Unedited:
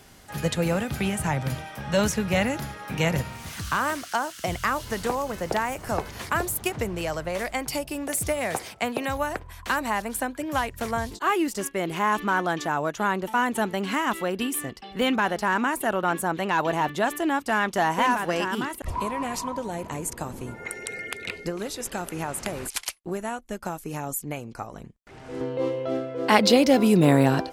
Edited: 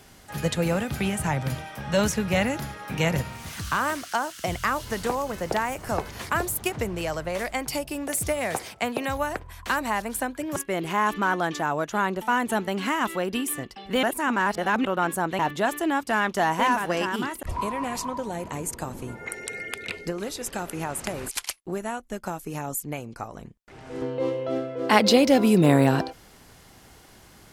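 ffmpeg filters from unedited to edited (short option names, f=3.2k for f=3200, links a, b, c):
-filter_complex "[0:a]asplit=5[a][b][c][d][e];[a]atrim=end=10.562[f];[b]atrim=start=11.618:end=15.092[g];[c]atrim=start=15.088:end=15.912,asetpts=PTS-STARTPTS,areverse[h];[d]atrim=start=15.908:end=16.452[i];[e]atrim=start=16.778[j];[f][g]acrossfade=d=0.004:c1=hsin:c2=hsin[k];[k][h]acrossfade=d=0.004:c1=hsin:c2=hsin[l];[l][i]acrossfade=d=0.004:c1=hsin:c2=hsin[m];[m][j]acrossfade=d=0.004:c1=hsin:c2=hsin"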